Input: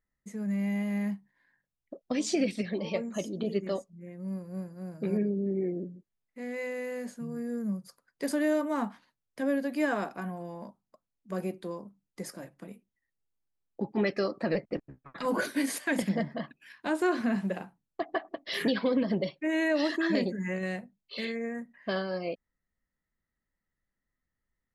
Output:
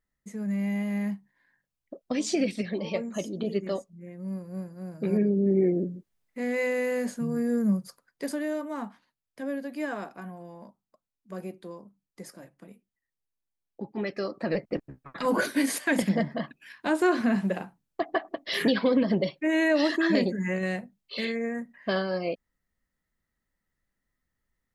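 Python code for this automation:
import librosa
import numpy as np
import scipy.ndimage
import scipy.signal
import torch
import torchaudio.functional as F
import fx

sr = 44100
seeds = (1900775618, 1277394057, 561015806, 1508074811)

y = fx.gain(x, sr, db=fx.line((4.92, 1.5), (5.55, 8.0), (7.76, 8.0), (8.45, -4.0), (14.04, -4.0), (14.83, 4.0)))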